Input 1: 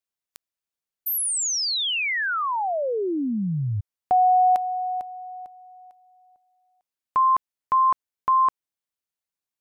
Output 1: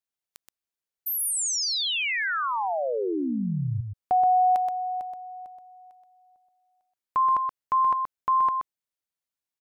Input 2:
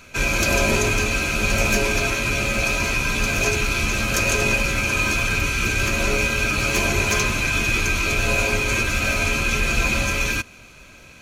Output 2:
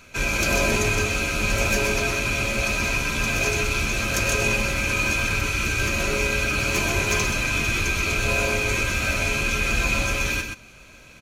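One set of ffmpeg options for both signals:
-af "aecho=1:1:126:0.501,volume=-3dB"

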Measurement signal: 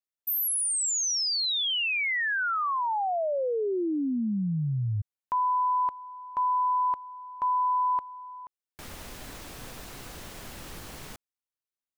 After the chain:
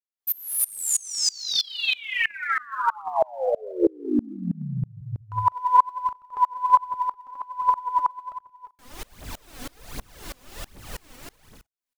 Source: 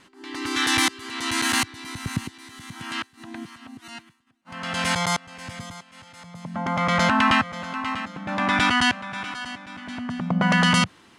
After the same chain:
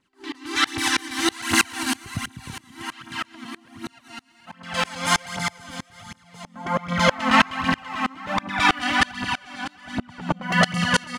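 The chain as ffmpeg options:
-af "aecho=1:1:200|330|414.5|469.4|505.1:0.631|0.398|0.251|0.158|0.1,aphaser=in_gain=1:out_gain=1:delay=4.2:decay=0.62:speed=1.3:type=triangular,aeval=exprs='val(0)*pow(10,-28*if(lt(mod(-3.1*n/s,1),2*abs(-3.1)/1000),1-mod(-3.1*n/s,1)/(2*abs(-3.1)/1000),(mod(-3.1*n/s,1)-2*abs(-3.1)/1000)/(1-2*abs(-3.1)/1000))/20)':c=same,volume=5dB"

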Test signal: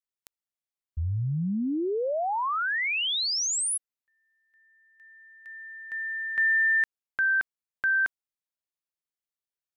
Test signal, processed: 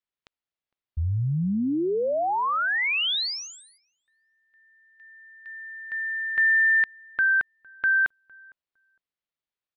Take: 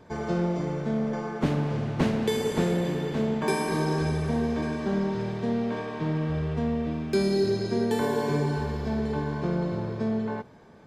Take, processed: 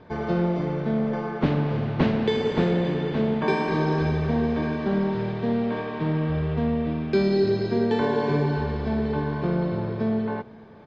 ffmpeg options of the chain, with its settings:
-filter_complex "[0:a]lowpass=f=4.3k:w=0.5412,lowpass=f=4.3k:w=1.3066,asplit=2[a][b];[b]adelay=458,lowpass=f=1.2k:p=1,volume=-24dB,asplit=2[c][d];[d]adelay=458,lowpass=f=1.2k:p=1,volume=0.18[e];[c][e]amix=inputs=2:normalize=0[f];[a][f]amix=inputs=2:normalize=0,volume=3dB"

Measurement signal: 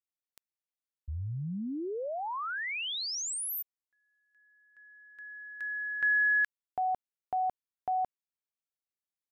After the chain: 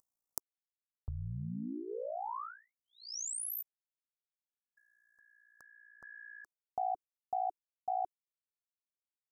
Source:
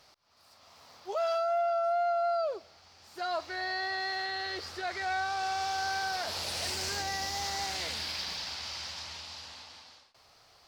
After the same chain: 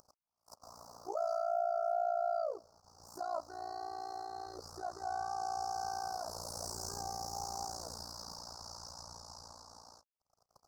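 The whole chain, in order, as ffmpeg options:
-filter_complex "[0:a]agate=range=-52dB:threshold=-58dB:ratio=16:release=50:detection=rms,equalizer=f=360:t=o:w=0.23:g=-6,asplit=2[a][b];[b]acompressor=mode=upward:threshold=-33dB:ratio=2.5:attack=62:release=642:knee=2.83:detection=peak,volume=1.5dB[c];[a][c]amix=inputs=2:normalize=0,tremolo=f=58:d=0.889,asuperstop=centerf=2600:order=8:qfactor=0.63,volume=-7.5dB"

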